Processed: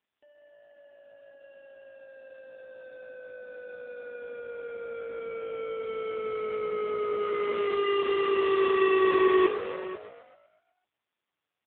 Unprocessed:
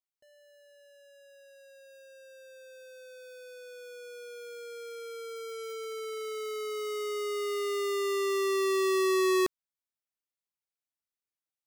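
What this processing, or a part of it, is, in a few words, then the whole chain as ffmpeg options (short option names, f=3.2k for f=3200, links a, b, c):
satellite phone: -filter_complex "[0:a]asettb=1/sr,asplit=3[a][b][c];[a]atrim=end=1.844[d];[b]atrim=start=1.84:end=2.76,asetpts=PTS-STARTPTS,afade=t=in:d=0.004:c=qsin,afade=t=out:st=0.916:d=0.004:c=qsin,highpass=f=140:p=1[e];[c]atrim=start=2.756[f];[d][e]acrossfade=d=0.004:c1=hsin:c2=qsin[g];[g][f]acrossfade=d=0.004:c1=qsin:c2=hsin,asettb=1/sr,asplit=3[h][i][j];[h]atrim=end=7.174[k];[i]atrim=start=7.17:end=9.11,asetpts=PTS-STARTPTS,afade=t=in:d=0.004:c=qsin,afade=t=out:st=1.936:d=0.004:c=qsin,adynamicequalizer=threshold=0.002:dfrequency=3000:dqfactor=3.5:tfrequency=3000:tqfactor=3.5:attack=5:release=100:ratio=0.375:range=3:mode=boostabove:tftype=bell[l];[j]atrim=start=9.106[m];[k][l]acrossfade=d=0.004:c1=hsin:c2=qsin[n];[n][m]acrossfade=d=0.004:c1=qsin:c2=hsin,asplit=8[o][p][q][r][s][t][u][v];[p]adelay=127,afreqshift=51,volume=-9.5dB[w];[q]adelay=254,afreqshift=102,volume=-14.5dB[x];[r]adelay=381,afreqshift=153,volume=-19.6dB[y];[s]adelay=508,afreqshift=204,volume=-24.6dB[z];[t]adelay=635,afreqshift=255,volume=-29.6dB[aa];[u]adelay=762,afreqshift=306,volume=-34.7dB[ab];[v]adelay=889,afreqshift=357,volume=-39.7dB[ac];[o][w][x][y][z][aa][ab][ac]amix=inputs=8:normalize=0,highpass=340,lowpass=3.2k,aecho=1:1:490:0.168,volume=6.5dB" -ar 8000 -c:a libopencore_amrnb -b:a 5150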